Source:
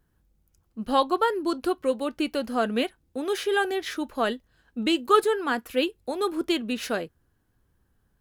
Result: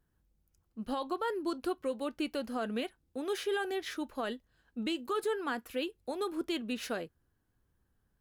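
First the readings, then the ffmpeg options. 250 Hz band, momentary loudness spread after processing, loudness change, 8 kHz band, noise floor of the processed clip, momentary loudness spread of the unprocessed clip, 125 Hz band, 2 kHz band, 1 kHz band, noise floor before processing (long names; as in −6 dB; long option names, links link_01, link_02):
−8.5 dB, 7 LU, −9.5 dB, −8.0 dB, −77 dBFS, 10 LU, can't be measured, −9.5 dB, −12.0 dB, −70 dBFS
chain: -af "alimiter=limit=-18dB:level=0:latency=1:release=67,volume=-7dB"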